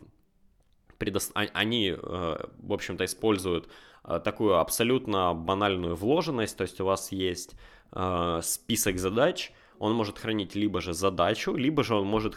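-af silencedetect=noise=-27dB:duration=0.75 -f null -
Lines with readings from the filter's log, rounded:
silence_start: 0.00
silence_end: 1.01 | silence_duration: 1.01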